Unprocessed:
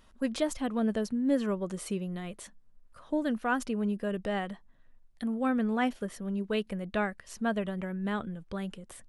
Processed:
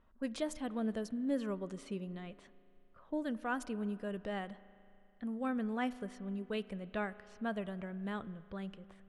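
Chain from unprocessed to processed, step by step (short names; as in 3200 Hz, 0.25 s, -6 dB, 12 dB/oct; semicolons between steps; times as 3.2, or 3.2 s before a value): low-pass opened by the level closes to 1600 Hz, open at -27.5 dBFS; spring tank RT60 2.8 s, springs 36 ms, chirp 45 ms, DRR 17 dB; gain -7.5 dB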